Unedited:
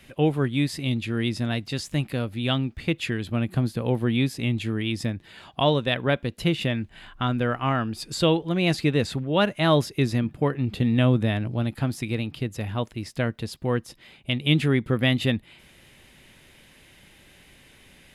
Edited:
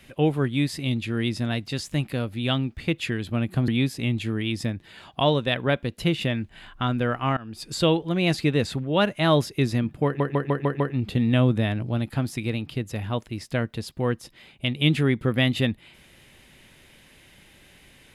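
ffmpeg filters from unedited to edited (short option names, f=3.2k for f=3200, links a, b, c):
-filter_complex "[0:a]asplit=8[a][b][c][d][e][f][g][h];[a]atrim=end=3.682[i];[b]atrim=start=4.078:end=7.77,asetpts=PTS-STARTPTS,afade=t=out:st=3.688:d=0.004:c=hsin:silence=0.0841395[j];[c]atrim=start=7.77:end=10.602,asetpts=PTS-STARTPTS,afade=t=in:d=0.33:silence=0.0841395[k];[d]atrim=start=10.448:end=10.602[l];[e]atrim=start=10.448:end=10.602[m];[f]atrim=start=10.448:end=10.602[n];[g]atrim=start=10.448:end=10.602[o];[h]atrim=start=10.448[p];[j][k]concat=n=2:v=0:a=1[q];[i][q]acrossfade=d=0.004:c1=hsin:c2=hsin[r];[r][l]acrossfade=d=0.004:c1=hsin:c2=hsin[s];[s][m]acrossfade=d=0.004:c1=hsin:c2=hsin[t];[t][n]acrossfade=d=0.004:c1=hsin:c2=hsin[u];[u][o]acrossfade=d=0.004:c1=hsin:c2=hsin[v];[v][p]acrossfade=d=0.004:c1=hsin:c2=hsin"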